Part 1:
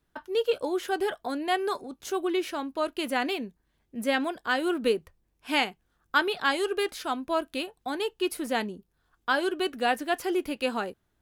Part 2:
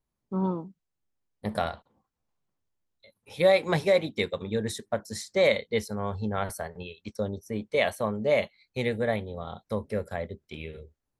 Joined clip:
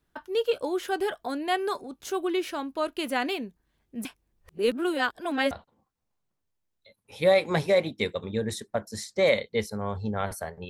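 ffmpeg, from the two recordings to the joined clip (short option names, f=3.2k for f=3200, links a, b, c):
-filter_complex "[0:a]apad=whole_dur=10.69,atrim=end=10.69,asplit=2[a][b];[a]atrim=end=4.052[c];[b]atrim=start=4.048:end=5.512,asetpts=PTS-STARTPTS,areverse[d];[1:a]atrim=start=1.688:end=6.87[e];[c][d]acrossfade=d=0.004:c1=hsin:c2=hsin[f];[f][e]acrossfade=d=0.004:c1=hsin:c2=hsin"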